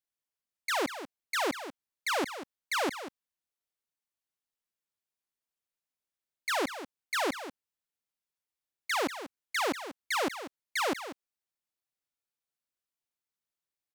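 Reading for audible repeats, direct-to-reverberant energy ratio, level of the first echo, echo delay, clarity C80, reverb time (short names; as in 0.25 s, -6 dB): 1, none, -11.5 dB, 0.191 s, none, none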